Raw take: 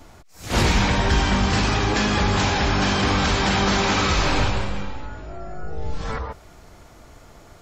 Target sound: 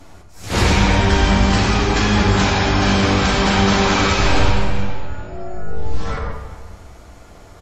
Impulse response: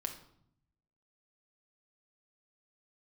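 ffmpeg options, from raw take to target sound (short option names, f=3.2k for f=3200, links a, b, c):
-filter_complex "[0:a]asplit=2[a][b];[b]adelay=380,highpass=300,lowpass=3.4k,asoftclip=type=hard:threshold=-18.5dB,volume=-17dB[c];[a][c]amix=inputs=2:normalize=0[d];[1:a]atrim=start_sample=2205,asetrate=24696,aresample=44100[e];[d][e]afir=irnorm=-1:irlink=0"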